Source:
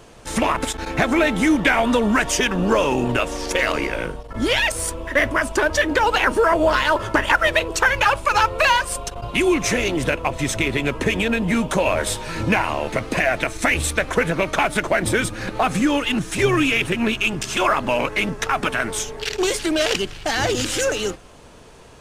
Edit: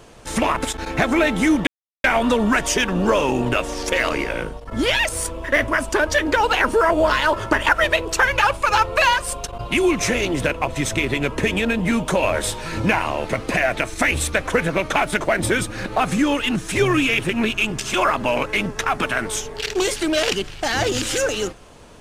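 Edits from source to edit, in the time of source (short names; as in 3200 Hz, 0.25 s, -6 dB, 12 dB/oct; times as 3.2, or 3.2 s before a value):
1.67 insert silence 0.37 s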